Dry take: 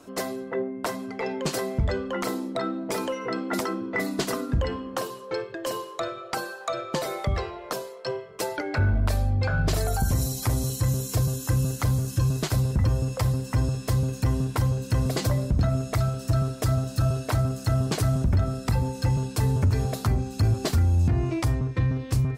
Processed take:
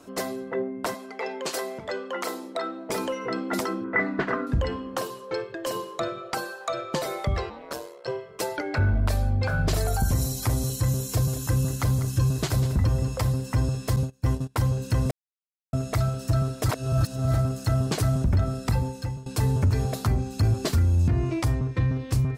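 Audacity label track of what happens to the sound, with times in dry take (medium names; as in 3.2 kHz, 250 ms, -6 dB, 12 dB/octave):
0.940000	2.900000	high-pass 410 Hz
3.840000	4.470000	resonant low-pass 1.7 kHz, resonance Q 2.8
5.750000	6.300000	peaking EQ 190 Hz +9.5 dB 1.3 oct
7.490000	8.070000	ring modulator 150 Hz -> 25 Hz
8.830000	9.320000	echo throw 390 ms, feedback 65%, level -15.5 dB
11.040000	13.280000	delay 194 ms -12.5 dB
13.960000	14.560000	gate -25 dBFS, range -27 dB
15.110000	15.730000	mute
16.690000	17.340000	reverse
18.750000	19.260000	fade out, to -18 dB
20.610000	21.400000	band-stop 770 Hz, Q 9.4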